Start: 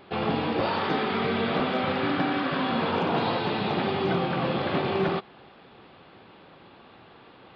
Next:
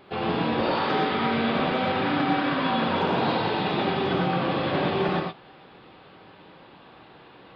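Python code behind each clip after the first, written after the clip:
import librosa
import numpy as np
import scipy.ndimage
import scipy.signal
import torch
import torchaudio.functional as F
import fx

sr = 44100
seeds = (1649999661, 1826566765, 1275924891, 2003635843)

y = fx.rev_gated(x, sr, seeds[0], gate_ms=140, shape='rising', drr_db=-0.5)
y = y * 10.0 ** (-1.5 / 20.0)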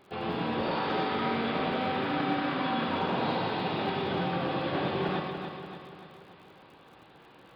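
y = fx.dmg_crackle(x, sr, seeds[1], per_s=63.0, level_db=-44.0)
y = fx.echo_feedback(y, sr, ms=289, feedback_pct=52, wet_db=-7.0)
y = y * 10.0 ** (-6.5 / 20.0)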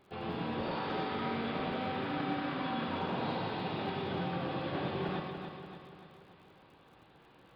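y = fx.low_shelf(x, sr, hz=120.0, db=7.5)
y = y * 10.0 ** (-6.5 / 20.0)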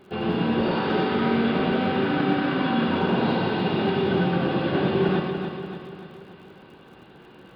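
y = fx.small_body(x, sr, hz=(210.0, 370.0, 1500.0, 2800.0), ring_ms=30, db=8)
y = y * 10.0 ** (8.5 / 20.0)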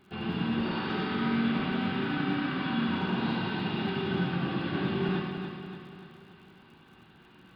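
y = fx.peak_eq(x, sr, hz=510.0, db=-12.0, octaves=1.0)
y = fx.room_flutter(y, sr, wall_m=11.9, rt60_s=0.43)
y = y * 10.0 ** (-5.0 / 20.0)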